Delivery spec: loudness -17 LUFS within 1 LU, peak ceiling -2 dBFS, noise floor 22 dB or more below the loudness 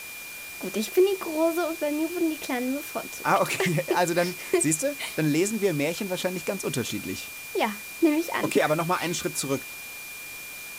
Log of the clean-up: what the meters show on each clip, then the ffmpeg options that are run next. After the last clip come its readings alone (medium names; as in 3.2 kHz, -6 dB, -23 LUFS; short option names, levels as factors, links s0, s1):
steady tone 2.4 kHz; tone level -39 dBFS; noise floor -39 dBFS; noise floor target -49 dBFS; loudness -26.5 LUFS; peak level -9.0 dBFS; loudness target -17.0 LUFS
-> -af "bandreject=f=2400:w=30"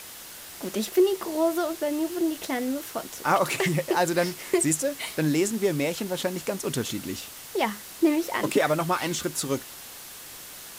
steady tone not found; noise floor -43 dBFS; noise floor target -49 dBFS
-> -af "afftdn=nr=6:nf=-43"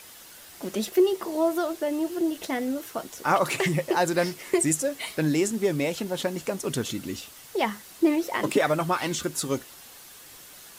noise floor -48 dBFS; noise floor target -49 dBFS
-> -af "afftdn=nr=6:nf=-48"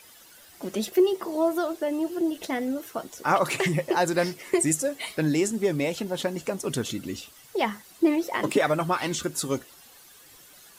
noise floor -52 dBFS; loudness -26.5 LUFS; peak level -9.0 dBFS; loudness target -17.0 LUFS
-> -af "volume=2.99,alimiter=limit=0.794:level=0:latency=1"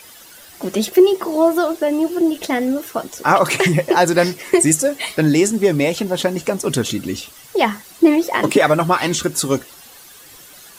loudness -17.0 LUFS; peak level -2.0 dBFS; noise floor -42 dBFS